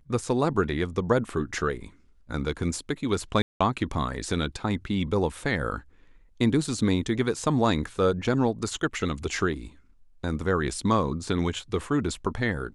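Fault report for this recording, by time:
0:03.42–0:03.60: drop-out 185 ms

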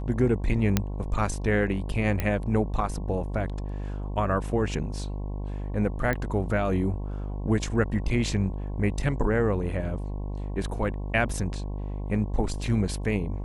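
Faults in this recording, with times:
mains buzz 50 Hz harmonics 22 −32 dBFS
0:00.77: click −7 dBFS
0:02.20: click −13 dBFS
0:06.13: click −15 dBFS
0:11.29: drop-out 4.7 ms

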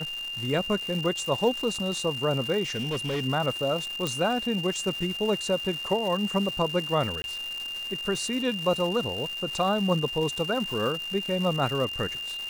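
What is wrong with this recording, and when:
surface crackle 440 per second −32 dBFS
whistle 2,800 Hz −32 dBFS
0:02.66–0:03.24: clipping −25 dBFS
0:04.07: click
0:07.22–0:07.24: drop-out 21 ms

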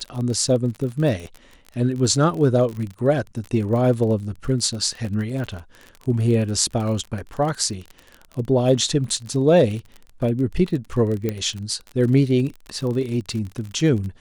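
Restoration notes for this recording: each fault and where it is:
surface crackle 31 per second −28 dBFS
0:11.29: click −11 dBFS

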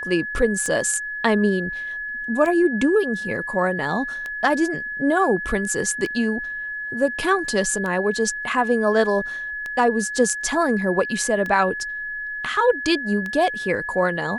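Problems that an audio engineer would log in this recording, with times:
scratch tick 33 1/3 rpm −16 dBFS
whistle 1,700 Hz −27 dBFS

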